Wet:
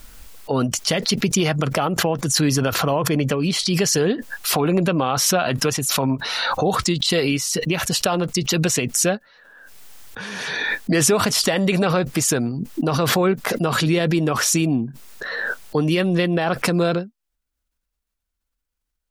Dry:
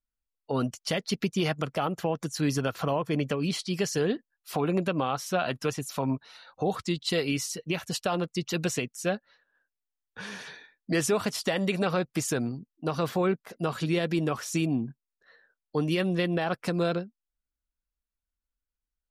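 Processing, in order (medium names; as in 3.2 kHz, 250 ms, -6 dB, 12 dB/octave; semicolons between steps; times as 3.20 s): swell ahead of each attack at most 24 dB/s; trim +7 dB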